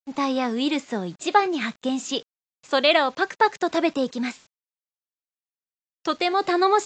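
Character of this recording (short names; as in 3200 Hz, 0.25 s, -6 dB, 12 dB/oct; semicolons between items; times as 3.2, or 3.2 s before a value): a quantiser's noise floor 8-bit, dither none; AAC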